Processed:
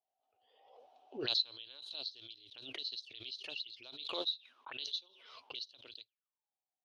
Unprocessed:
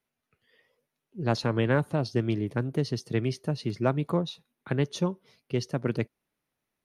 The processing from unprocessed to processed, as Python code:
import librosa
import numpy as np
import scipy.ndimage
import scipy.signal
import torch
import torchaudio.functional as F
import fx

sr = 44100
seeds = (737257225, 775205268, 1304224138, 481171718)

y = fx.curve_eq(x, sr, hz=(110.0, 170.0, 260.0, 660.0, 2000.0, 3000.0, 7000.0), db=(0, -29, -3, -1, -11, 11, 7))
y = fx.auto_wah(y, sr, base_hz=740.0, top_hz=4000.0, q=15.0, full_db=-29.0, direction='up')
y = fx.air_absorb(y, sr, metres=74.0)
y = fx.pre_swell(y, sr, db_per_s=48.0)
y = y * 10.0 ** (1.0 / 20.0)